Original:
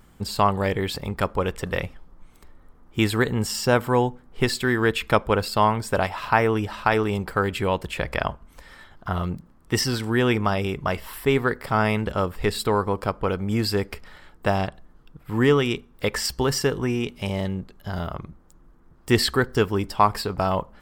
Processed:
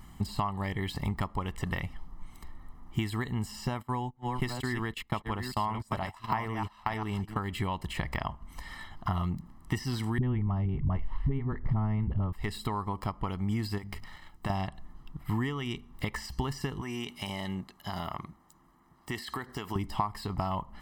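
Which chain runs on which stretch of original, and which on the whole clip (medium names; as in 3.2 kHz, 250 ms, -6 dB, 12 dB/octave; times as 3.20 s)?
3.67–7.39 s: chunks repeated in reverse 468 ms, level -8 dB + gate -29 dBFS, range -21 dB
10.18–12.33 s: low-pass 3.5 kHz + tilt EQ -4.5 dB/octave + phase dispersion highs, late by 47 ms, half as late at 350 Hz
13.78–14.50 s: companding laws mixed up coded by A + hum notches 50/100/150/200/250 Hz + compression 3:1, threshold -31 dBFS
16.81–19.76 s: high-pass 440 Hz 6 dB/octave + treble shelf 8.3 kHz +2.5 dB + compression, threshold -31 dBFS
whole clip: compression 16:1, threshold -29 dBFS; comb 1 ms, depth 71%; de-esser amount 95%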